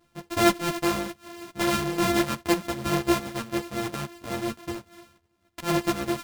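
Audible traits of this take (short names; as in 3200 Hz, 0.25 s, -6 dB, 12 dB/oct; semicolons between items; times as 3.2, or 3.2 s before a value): a buzz of ramps at a fixed pitch in blocks of 128 samples; tremolo triangle 6.5 Hz, depth 40%; a shimmering, thickened sound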